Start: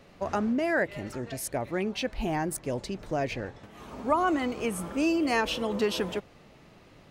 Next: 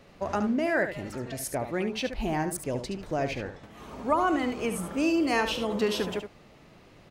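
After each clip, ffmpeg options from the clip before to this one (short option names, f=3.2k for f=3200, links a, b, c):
-af "aecho=1:1:72:0.355"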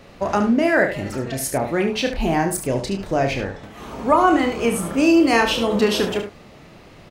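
-filter_complex "[0:a]asplit=2[a][b];[b]adelay=30,volume=-7dB[c];[a][c]amix=inputs=2:normalize=0,volume=8.5dB"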